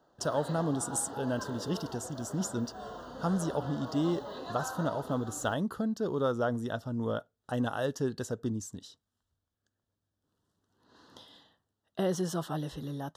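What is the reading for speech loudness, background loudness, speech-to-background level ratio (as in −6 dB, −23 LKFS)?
−33.5 LKFS, −42.5 LKFS, 9.0 dB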